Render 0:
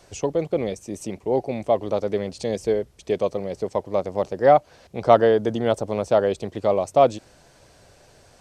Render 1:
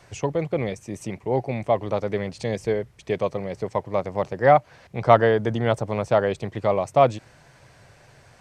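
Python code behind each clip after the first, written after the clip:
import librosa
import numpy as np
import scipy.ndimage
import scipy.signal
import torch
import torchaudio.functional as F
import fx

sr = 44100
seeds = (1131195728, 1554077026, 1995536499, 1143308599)

y = fx.graphic_eq(x, sr, hz=(125, 1000, 2000), db=(11, 5, 9))
y = y * librosa.db_to_amplitude(-4.0)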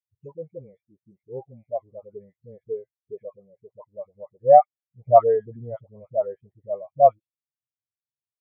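y = fx.dispersion(x, sr, late='highs', ms=91.0, hz=840.0)
y = fx.spectral_expand(y, sr, expansion=2.5)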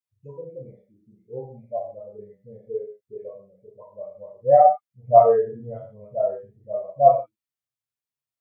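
y = fx.rev_gated(x, sr, seeds[0], gate_ms=180, shape='falling', drr_db=-4.0)
y = y * librosa.db_to_amplitude(-4.0)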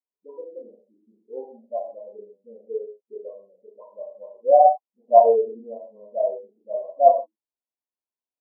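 y = fx.brickwall_bandpass(x, sr, low_hz=210.0, high_hz=1100.0)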